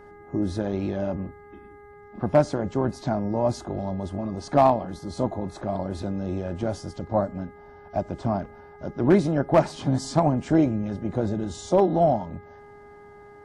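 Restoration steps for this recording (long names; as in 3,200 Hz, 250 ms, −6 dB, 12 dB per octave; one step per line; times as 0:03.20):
clipped peaks rebuilt −9.5 dBFS
hum removal 410.9 Hz, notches 5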